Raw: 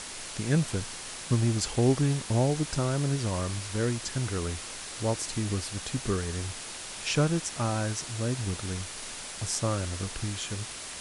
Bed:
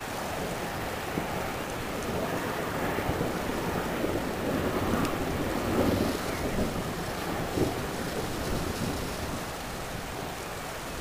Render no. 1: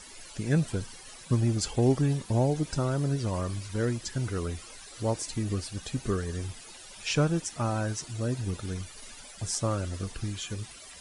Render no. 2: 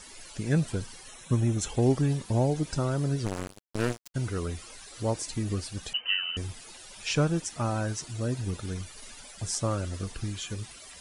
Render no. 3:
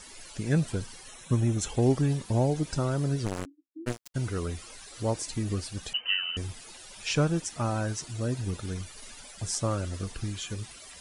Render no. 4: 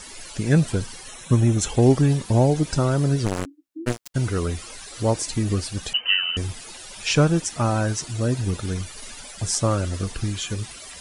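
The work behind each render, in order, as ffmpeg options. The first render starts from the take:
-af "afftdn=nr=14:nf=-40"
-filter_complex "[0:a]asettb=1/sr,asplit=3[s0][s1][s2];[s0]atrim=end=1.084[s3];[s1]atrim=start=1.08:end=1.7,asetpts=PTS-STARTPTS,afade=t=in:d=0.004:c=qsin,afade=t=out:st=0.616:d=0.004:c=qsin,asuperstop=centerf=4700:order=4:qfactor=4.4[s4];[s2]atrim=start=1.696[s5];[s3][s4]acrossfade=d=0.004:c1=hsin:c2=qsin[s6];[s6][s5]acrossfade=d=0.004:c1=qsin:c2=hsin,asplit=3[s7][s8][s9];[s7]afade=t=out:st=3.25:d=0.02[s10];[s8]acrusher=bits=3:mix=0:aa=0.5,afade=t=in:st=3.25:d=0.02,afade=t=out:st=4.14:d=0.02[s11];[s9]afade=t=in:st=4.14:d=0.02[s12];[s10][s11][s12]amix=inputs=3:normalize=0,asettb=1/sr,asplit=3[s13][s14][s15];[s13]atrim=end=5.934[s16];[s14]atrim=start=5.93:end=6.37,asetpts=PTS-STARTPTS,afade=t=in:d=0.004:c=qsin,afade=t=out:st=0.436:d=0.004:c=qsin,lowpass=f=2600:t=q:w=0.5098,lowpass=f=2600:t=q:w=0.6013,lowpass=f=2600:t=q:w=0.9,lowpass=f=2600:t=q:w=2.563,afreqshift=-3100[s17];[s15]atrim=start=6.366[s18];[s16][s17]acrossfade=d=0.004:c1=hsin:c2=qsin[s19];[s19][s18]acrossfade=d=0.004:c1=qsin:c2=hsin"
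-filter_complex "[0:a]asplit=3[s0][s1][s2];[s0]afade=t=out:st=3.44:d=0.02[s3];[s1]asuperpass=centerf=300:order=8:qfactor=5.2,afade=t=in:st=3.44:d=0.02,afade=t=out:st=3.86:d=0.02[s4];[s2]afade=t=in:st=3.86:d=0.02[s5];[s3][s4][s5]amix=inputs=3:normalize=0"
-af "volume=2.37"

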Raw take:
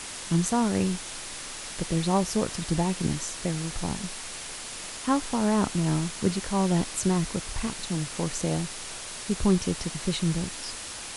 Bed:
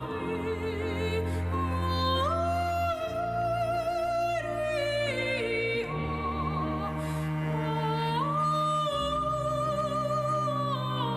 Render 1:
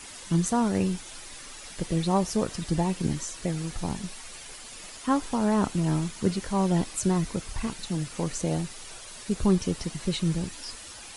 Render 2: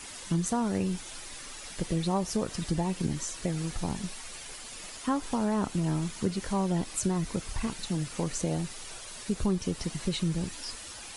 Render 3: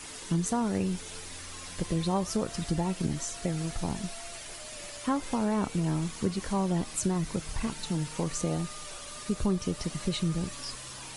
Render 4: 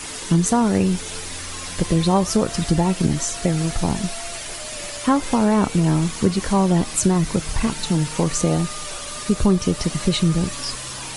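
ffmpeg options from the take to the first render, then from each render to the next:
-af "afftdn=nr=9:nf=-39"
-af "acompressor=threshold=0.0501:ratio=2.5"
-filter_complex "[1:a]volume=0.0891[s0];[0:a][s0]amix=inputs=2:normalize=0"
-af "volume=3.55"

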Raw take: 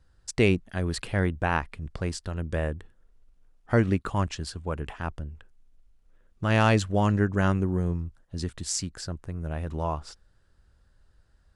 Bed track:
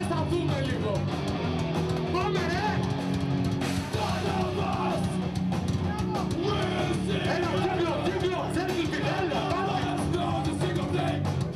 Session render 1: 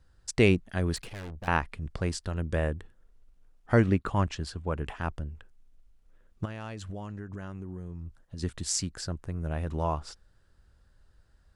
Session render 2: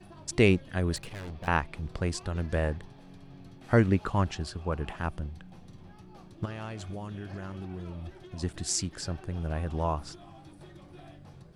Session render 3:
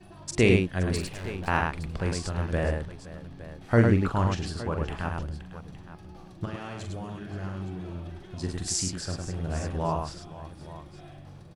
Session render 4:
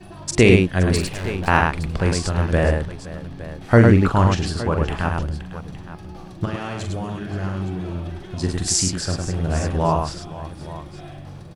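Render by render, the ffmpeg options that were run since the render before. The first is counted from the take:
-filter_complex "[0:a]asettb=1/sr,asplit=3[s0][s1][s2];[s0]atrim=end=0.964[s3];[s1]atrim=start=0.96:end=1.48,asetpts=PTS-STARTPTS,afade=t=in:d=0.004:c=qsin,afade=t=out:st=0.516:d=0.004:c=qsin,aeval=exprs='(tanh(79.4*val(0)+0.55)-tanh(0.55))/79.4':c=same[s4];[s2]atrim=start=1.476[s5];[s3][s4]acrossfade=d=0.004:c1=hsin:c2=qsin[s6];[s6][s5]acrossfade=d=0.004:c1=qsin:c2=hsin,asettb=1/sr,asplit=3[s7][s8][s9];[s7]atrim=end=3.874[s10];[s8]atrim=start=3.87:end=4.81,asetpts=PTS-STARTPTS,afade=t=in:d=0.004:c=qsin,afade=t=out:st=0.936:d=0.004:c=qsin,highshelf=f=4900:g=-7[s11];[s9]atrim=start=4.806[s12];[s10][s11]acrossfade=d=0.004:c1=hsin:c2=qsin[s13];[s13][s12]acrossfade=d=0.004:c1=qsin:c2=hsin,asplit=3[s14][s15][s16];[s14]afade=t=out:st=6.44:d=0.02[s17];[s15]acompressor=threshold=0.02:ratio=16:attack=3.2:release=140:knee=1:detection=peak,afade=t=in:st=6.44:d=0.02,afade=t=out:st=8.42:d=0.02[s18];[s16]afade=t=in:st=8.42:d=0.02[s19];[s17][s18][s19]amix=inputs=3:normalize=0"
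-filter_complex "[1:a]volume=0.075[s0];[0:a][s0]amix=inputs=2:normalize=0"
-af "aecho=1:1:43|104|521|865:0.473|0.631|0.15|0.168"
-af "volume=2.82,alimiter=limit=0.891:level=0:latency=1"

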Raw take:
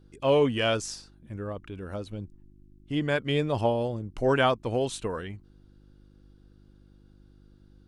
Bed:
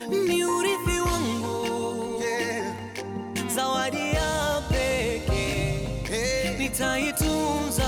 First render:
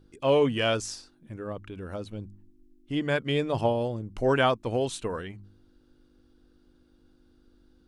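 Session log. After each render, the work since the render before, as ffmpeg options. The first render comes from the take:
-af "bandreject=f=50:t=h:w=4,bandreject=f=100:t=h:w=4,bandreject=f=150:t=h:w=4,bandreject=f=200:t=h:w=4"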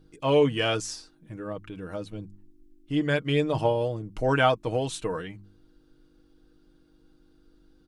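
-af "aecho=1:1:6.4:0.54"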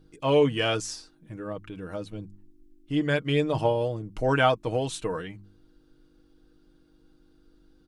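-af anull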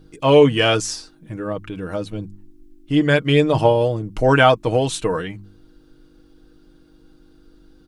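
-af "volume=2.82,alimiter=limit=0.891:level=0:latency=1"

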